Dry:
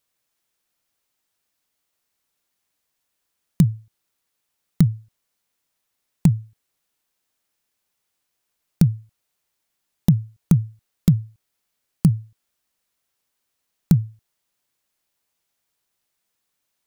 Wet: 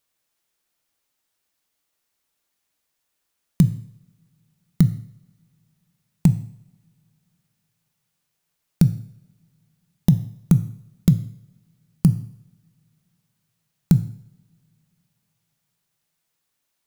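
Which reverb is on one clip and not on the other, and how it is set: two-slope reverb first 0.62 s, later 3 s, from -27 dB, DRR 11 dB

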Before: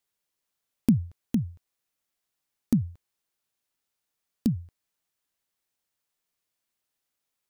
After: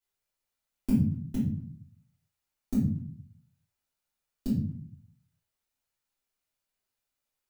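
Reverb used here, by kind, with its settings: simulated room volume 50 m³, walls mixed, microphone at 3 m; trim -15.5 dB

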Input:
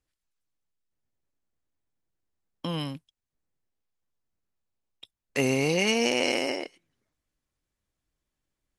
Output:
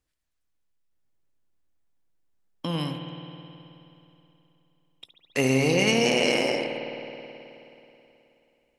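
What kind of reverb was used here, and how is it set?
spring tank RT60 3.1 s, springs 53 ms, chirp 20 ms, DRR 4 dB; trim +1.5 dB

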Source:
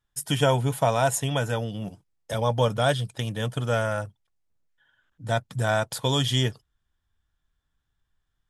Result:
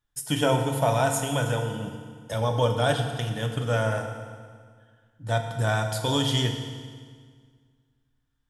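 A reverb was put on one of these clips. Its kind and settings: FDN reverb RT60 1.8 s, low-frequency decay 1.2×, high-frequency decay 0.9×, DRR 3.5 dB; trim -2 dB

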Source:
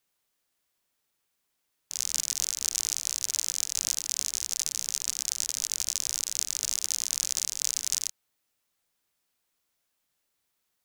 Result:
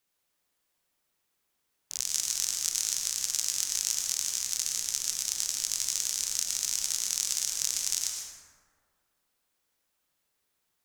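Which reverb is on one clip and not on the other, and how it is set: plate-style reverb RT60 1.9 s, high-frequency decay 0.4×, pre-delay 90 ms, DRR 0.5 dB; trim -1.5 dB

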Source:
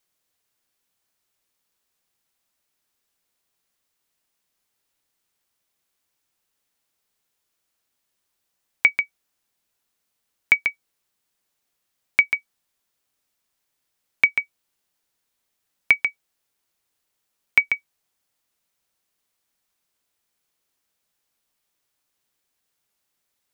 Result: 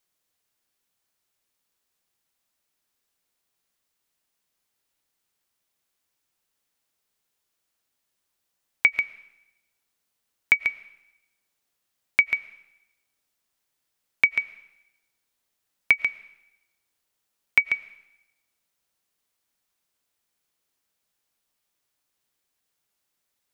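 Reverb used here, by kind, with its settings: algorithmic reverb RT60 0.89 s, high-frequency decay 1×, pre-delay 70 ms, DRR 18 dB; trim -2 dB

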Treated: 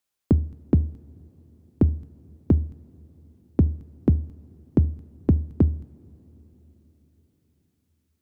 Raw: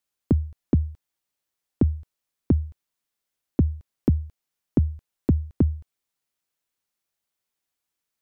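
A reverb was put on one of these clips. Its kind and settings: two-slope reverb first 0.37 s, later 4.8 s, from -19 dB, DRR 14.5 dB; trim +1.5 dB

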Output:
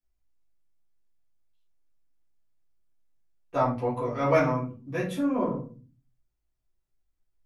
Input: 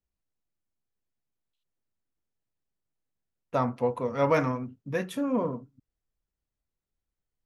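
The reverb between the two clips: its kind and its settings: simulated room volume 180 m³, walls furnished, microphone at 3.6 m; trim -7 dB

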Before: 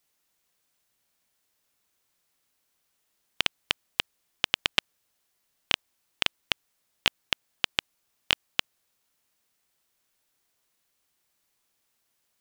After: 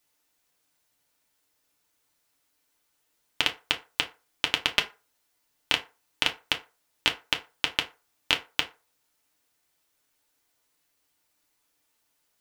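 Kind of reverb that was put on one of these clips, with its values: FDN reverb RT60 0.31 s, low-frequency decay 0.7×, high-frequency decay 0.6×, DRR 2 dB

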